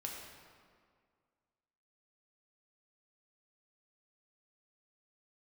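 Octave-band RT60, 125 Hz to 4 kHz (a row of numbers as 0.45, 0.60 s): 2.0, 2.1, 2.0, 2.0, 1.6, 1.3 s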